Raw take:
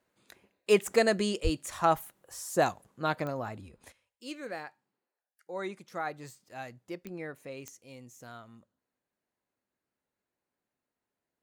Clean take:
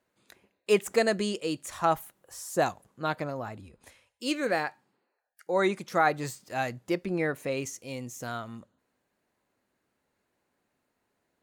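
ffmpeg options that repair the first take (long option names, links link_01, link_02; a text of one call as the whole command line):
ffmpeg -i in.wav -filter_complex "[0:a]adeclick=threshold=4,asplit=3[link_01][link_02][link_03];[link_01]afade=type=out:start_time=1.43:duration=0.02[link_04];[link_02]highpass=frequency=140:width=0.5412,highpass=frequency=140:width=1.3066,afade=type=in:start_time=1.43:duration=0.02,afade=type=out:start_time=1.55:duration=0.02[link_05];[link_03]afade=type=in:start_time=1.55:duration=0.02[link_06];[link_04][link_05][link_06]amix=inputs=3:normalize=0,asetnsamples=nb_out_samples=441:pad=0,asendcmd='3.92 volume volume 11.5dB',volume=0dB" out.wav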